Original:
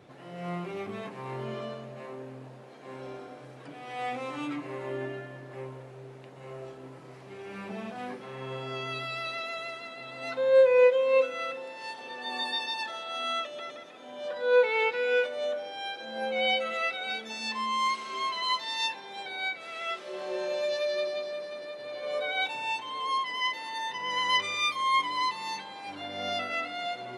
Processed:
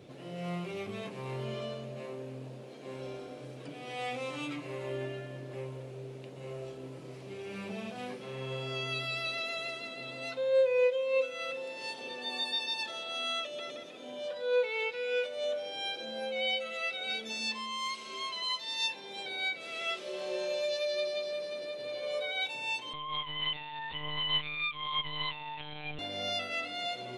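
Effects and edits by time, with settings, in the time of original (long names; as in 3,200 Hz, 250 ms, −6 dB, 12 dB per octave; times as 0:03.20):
0:22.93–0:25.99: one-pitch LPC vocoder at 8 kHz 150 Hz
whole clip: dynamic equaliser 290 Hz, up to −8 dB, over −46 dBFS, Q 1; speech leveller within 3 dB 0.5 s; flat-topped bell 1,200 Hz −8 dB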